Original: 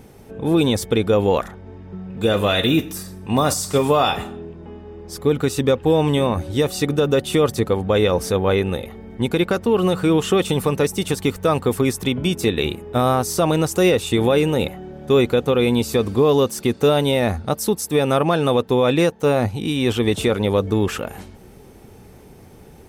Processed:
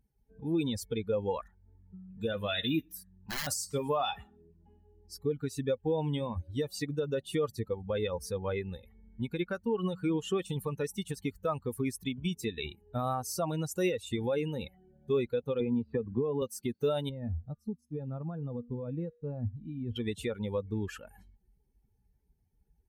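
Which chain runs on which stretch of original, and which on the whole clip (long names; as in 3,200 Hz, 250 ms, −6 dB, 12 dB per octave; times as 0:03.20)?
0:03.03–0:03.47: moving average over 9 samples + wrap-around overflow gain 15 dB
0:15.60–0:16.42: high-frequency loss of the air 480 metres + notch filter 2,200 Hz, Q 18 + multiband upward and downward compressor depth 100%
0:17.09–0:19.96: spectral tilt −3.5 dB per octave + tuned comb filter 240 Hz, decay 1.1 s, mix 70%
whole clip: spectral dynamics exaggerated over time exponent 2; downward compressor 1.5 to 1, threshold −45 dBFS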